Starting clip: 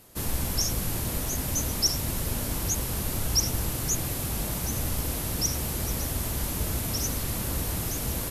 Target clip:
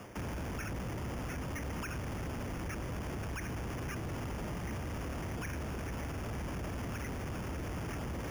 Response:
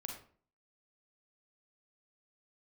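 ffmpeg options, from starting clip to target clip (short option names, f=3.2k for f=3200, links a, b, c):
-filter_complex "[0:a]highpass=58,highshelf=f=7.1k:g=-10.5,areverse,acompressor=mode=upward:threshold=-27dB:ratio=2.5,areverse,alimiter=level_in=2dB:limit=-24dB:level=0:latency=1,volume=-2dB,acrossover=split=88|180|460|6300[a][b][c][d][e];[a]acompressor=threshold=-42dB:ratio=4[f];[b]acompressor=threshold=-47dB:ratio=4[g];[c]acompressor=threshold=-44dB:ratio=4[h];[d]acompressor=threshold=-48dB:ratio=4[i];[e]acompressor=threshold=-48dB:ratio=4[j];[f][g][h][i][j]amix=inputs=5:normalize=0,acrossover=split=930[k][l];[l]acrusher=samples=11:mix=1:aa=0.000001[m];[k][m]amix=inputs=2:normalize=0,asoftclip=type=hard:threshold=-38.5dB,volume=3dB"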